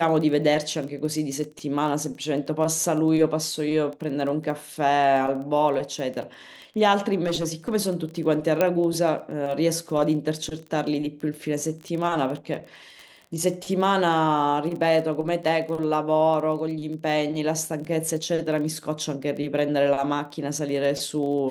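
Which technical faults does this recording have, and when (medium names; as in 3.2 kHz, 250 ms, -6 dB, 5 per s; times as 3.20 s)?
crackle 17 per s -31 dBFS
7.26–7.75 s: clipped -20.5 dBFS
8.61 s: pop -8 dBFS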